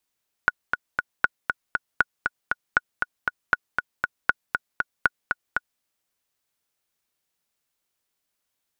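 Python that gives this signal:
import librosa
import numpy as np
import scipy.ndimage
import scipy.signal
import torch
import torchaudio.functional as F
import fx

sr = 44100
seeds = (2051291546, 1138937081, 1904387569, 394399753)

y = fx.click_track(sr, bpm=236, beats=3, bars=7, hz=1460.0, accent_db=5.0, level_db=-4.0)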